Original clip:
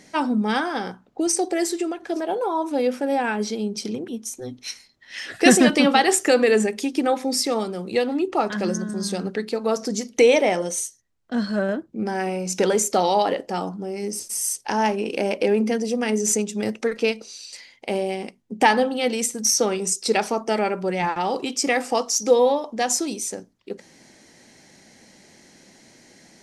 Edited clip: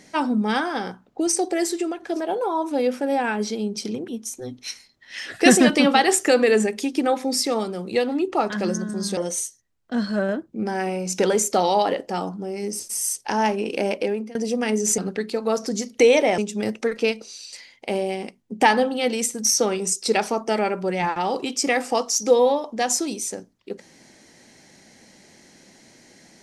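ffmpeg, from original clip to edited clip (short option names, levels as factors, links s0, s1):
-filter_complex "[0:a]asplit=5[s0][s1][s2][s3][s4];[s0]atrim=end=9.172[s5];[s1]atrim=start=10.568:end=15.75,asetpts=PTS-STARTPTS,afade=t=out:st=4.732:d=0.45:silence=0.0630957[s6];[s2]atrim=start=15.75:end=16.382,asetpts=PTS-STARTPTS,afade=t=in:d=0.004:c=hsin:silence=0.0630957[s7];[s3]atrim=start=9.168:end=10.572[s8];[s4]atrim=start=16.378[s9];[s6][s7]concat=n=2:v=0:a=1[s10];[s5][s10]acrossfade=d=0.004:c1=hsin:c2=hsin[s11];[s11][s8]acrossfade=d=0.004:c1=hsin:c2=hsin[s12];[s12][s9]acrossfade=d=0.004:c1=hsin:c2=hsin"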